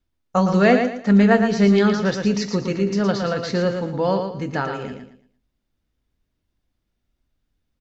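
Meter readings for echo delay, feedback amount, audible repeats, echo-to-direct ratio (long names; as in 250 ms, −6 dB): 114 ms, 29%, 3, −6.0 dB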